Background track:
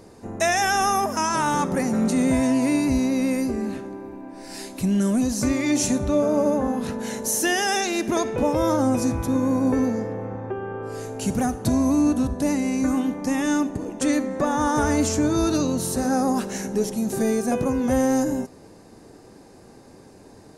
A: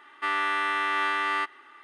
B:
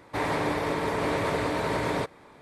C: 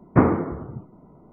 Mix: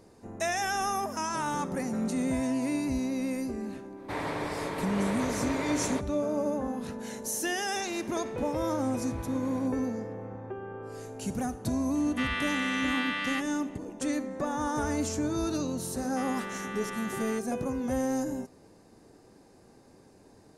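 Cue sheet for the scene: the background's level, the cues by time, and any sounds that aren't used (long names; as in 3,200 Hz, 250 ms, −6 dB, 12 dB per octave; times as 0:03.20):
background track −9 dB
0:03.95: mix in B −6 dB, fades 0.05 s
0:07.62: mix in B −16.5 dB + brickwall limiter −24 dBFS
0:11.95: mix in A −11 dB + meter weighting curve D
0:15.94: mix in A −13.5 dB
not used: C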